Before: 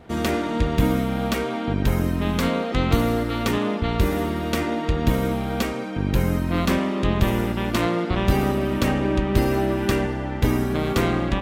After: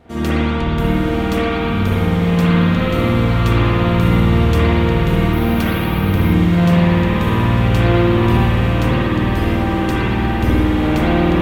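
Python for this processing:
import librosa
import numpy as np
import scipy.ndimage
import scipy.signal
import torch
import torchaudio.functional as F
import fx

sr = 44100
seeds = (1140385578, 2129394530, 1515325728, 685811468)

p1 = fx.rider(x, sr, range_db=10, speed_s=0.5)
p2 = p1 + fx.echo_diffused(p1, sr, ms=945, feedback_pct=69, wet_db=-6.5, dry=0)
p3 = fx.rev_spring(p2, sr, rt60_s=2.9, pass_ms=(52,), chirp_ms=70, drr_db=-9.5)
p4 = fx.resample_bad(p3, sr, factor=3, down='filtered', up='hold', at=(5.33, 6.33))
y = p4 * 10.0 ** (-4.0 / 20.0)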